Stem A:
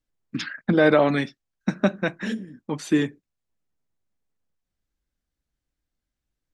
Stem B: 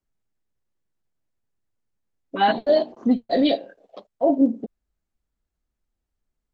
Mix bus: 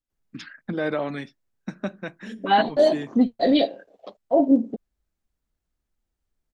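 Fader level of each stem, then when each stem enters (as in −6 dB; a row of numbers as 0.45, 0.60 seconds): −9.0, +0.5 decibels; 0.00, 0.10 seconds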